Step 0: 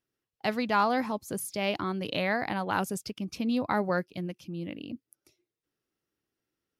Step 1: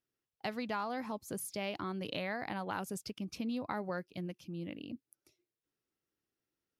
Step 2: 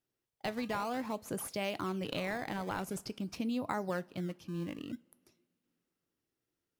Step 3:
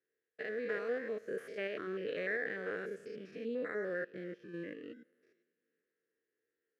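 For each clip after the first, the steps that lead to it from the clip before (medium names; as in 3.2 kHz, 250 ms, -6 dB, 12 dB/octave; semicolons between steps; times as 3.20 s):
compression 4:1, threshold -29 dBFS, peak gain reduction 8.5 dB; trim -5 dB
in parallel at -8.5 dB: decimation with a swept rate 18×, swing 160% 0.49 Hz; on the sum: reverberation, pre-delay 3 ms, DRR 16.5 dB
spectrogram pixelated in time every 100 ms; two resonant band-passes 890 Hz, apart 1.9 oct; trim +12 dB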